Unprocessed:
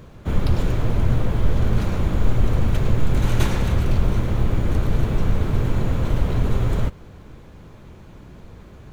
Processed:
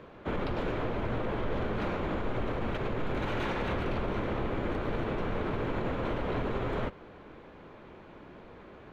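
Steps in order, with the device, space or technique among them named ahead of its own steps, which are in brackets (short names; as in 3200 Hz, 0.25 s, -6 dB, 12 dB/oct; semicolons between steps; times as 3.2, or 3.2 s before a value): DJ mixer with the lows and highs turned down (three-band isolator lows -16 dB, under 250 Hz, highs -23 dB, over 3500 Hz; limiter -23 dBFS, peak gain reduction 7.5 dB)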